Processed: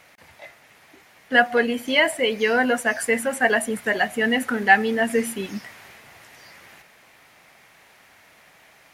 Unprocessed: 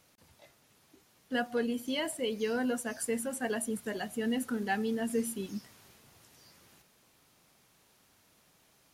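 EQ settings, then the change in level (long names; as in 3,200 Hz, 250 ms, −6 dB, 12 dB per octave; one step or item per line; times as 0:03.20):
parametric band 700 Hz +8.5 dB 1.1 octaves
parametric band 2,000 Hz +15 dB 1.1 octaves
+6.0 dB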